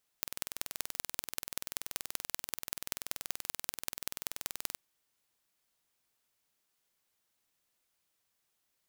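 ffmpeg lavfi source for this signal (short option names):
-f lavfi -i "aevalsrc='0.562*eq(mod(n,2120),0)*(0.5+0.5*eq(mod(n,8480),0))':d=4.55:s=44100"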